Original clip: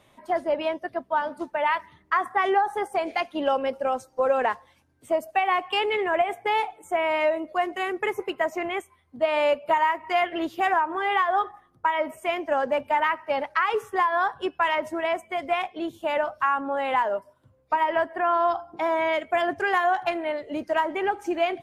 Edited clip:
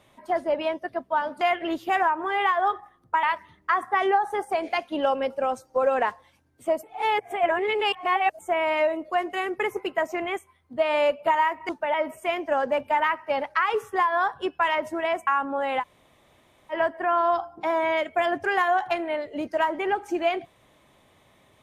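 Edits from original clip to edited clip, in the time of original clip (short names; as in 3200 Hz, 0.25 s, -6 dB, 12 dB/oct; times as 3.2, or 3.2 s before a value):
1.41–1.66 swap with 10.12–11.94
5.26–6.82 reverse
15.27–16.43 cut
16.97–17.88 room tone, crossfade 0.06 s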